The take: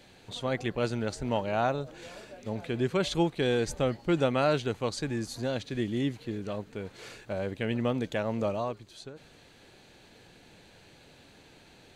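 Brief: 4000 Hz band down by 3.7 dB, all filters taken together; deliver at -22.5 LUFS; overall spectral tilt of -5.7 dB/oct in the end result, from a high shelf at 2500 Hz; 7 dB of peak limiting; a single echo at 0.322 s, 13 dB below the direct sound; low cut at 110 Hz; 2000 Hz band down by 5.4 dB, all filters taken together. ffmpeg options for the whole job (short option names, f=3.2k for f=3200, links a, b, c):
-af "highpass=110,equalizer=f=2k:t=o:g=-8.5,highshelf=f=2.5k:g=4.5,equalizer=f=4k:t=o:g=-5.5,alimiter=limit=-20.5dB:level=0:latency=1,aecho=1:1:322:0.224,volume=11dB"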